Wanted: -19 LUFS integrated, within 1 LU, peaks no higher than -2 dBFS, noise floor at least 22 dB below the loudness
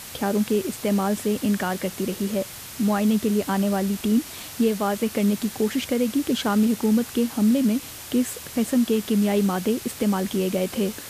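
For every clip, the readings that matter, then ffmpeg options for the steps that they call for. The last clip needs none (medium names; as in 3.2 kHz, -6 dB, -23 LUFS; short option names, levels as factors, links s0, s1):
noise floor -39 dBFS; noise floor target -46 dBFS; loudness -23.5 LUFS; peak level -11.5 dBFS; loudness target -19.0 LUFS
-> -af "afftdn=nr=7:nf=-39"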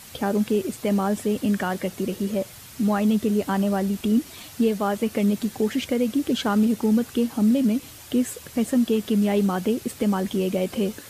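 noise floor -44 dBFS; noise floor target -46 dBFS
-> -af "afftdn=nr=6:nf=-44"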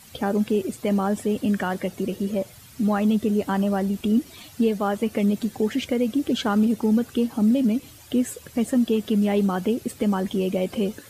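noise floor -47 dBFS; loudness -23.5 LUFS; peak level -11.5 dBFS; loudness target -19.0 LUFS
-> -af "volume=1.68"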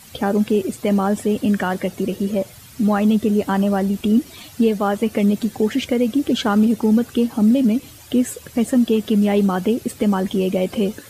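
loudness -19.0 LUFS; peak level -7.0 dBFS; noise floor -43 dBFS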